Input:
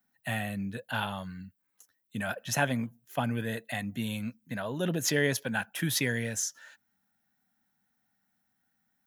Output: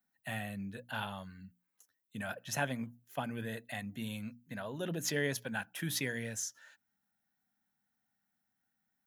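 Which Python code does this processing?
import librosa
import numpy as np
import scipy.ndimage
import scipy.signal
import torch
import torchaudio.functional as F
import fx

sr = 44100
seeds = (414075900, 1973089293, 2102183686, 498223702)

y = fx.hum_notches(x, sr, base_hz=60, count=5)
y = F.gain(torch.from_numpy(y), -6.5).numpy()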